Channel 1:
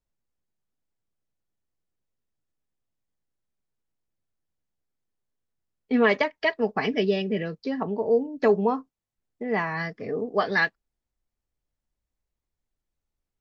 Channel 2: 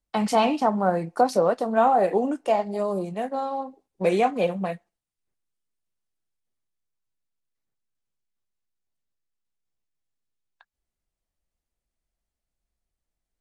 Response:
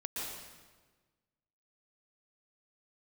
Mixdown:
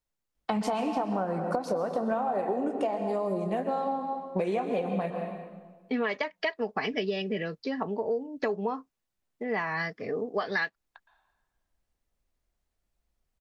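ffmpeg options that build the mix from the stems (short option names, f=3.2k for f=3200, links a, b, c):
-filter_complex "[0:a]lowshelf=f=410:g=-6.5,volume=1.5dB[a];[1:a]highshelf=f=3.7k:g=-8,acompressor=threshold=-20dB:ratio=6,adelay=350,volume=1.5dB,asplit=2[b][c];[c]volume=-6.5dB[d];[2:a]atrim=start_sample=2205[e];[d][e]afir=irnorm=-1:irlink=0[f];[a][b][f]amix=inputs=3:normalize=0,acompressor=threshold=-26dB:ratio=6"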